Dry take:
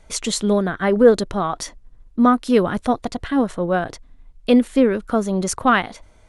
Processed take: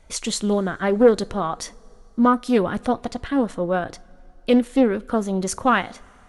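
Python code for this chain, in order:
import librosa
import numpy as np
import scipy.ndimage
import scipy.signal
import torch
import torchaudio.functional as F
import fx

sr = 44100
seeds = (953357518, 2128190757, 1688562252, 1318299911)

y = fx.rev_double_slope(x, sr, seeds[0], early_s=0.25, late_s=3.2, knee_db=-21, drr_db=15.5)
y = fx.doppler_dist(y, sr, depth_ms=0.18)
y = y * librosa.db_to_amplitude(-2.5)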